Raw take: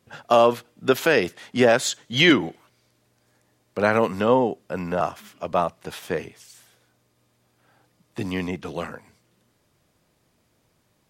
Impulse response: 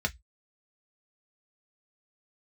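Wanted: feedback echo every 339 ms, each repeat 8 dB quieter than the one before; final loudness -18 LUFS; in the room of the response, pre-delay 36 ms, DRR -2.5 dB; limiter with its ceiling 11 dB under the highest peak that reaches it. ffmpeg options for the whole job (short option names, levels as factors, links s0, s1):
-filter_complex "[0:a]alimiter=limit=0.168:level=0:latency=1,aecho=1:1:339|678|1017|1356|1695:0.398|0.159|0.0637|0.0255|0.0102,asplit=2[s0][s1];[1:a]atrim=start_sample=2205,adelay=36[s2];[s1][s2]afir=irnorm=-1:irlink=0,volume=0.596[s3];[s0][s3]amix=inputs=2:normalize=0,volume=2"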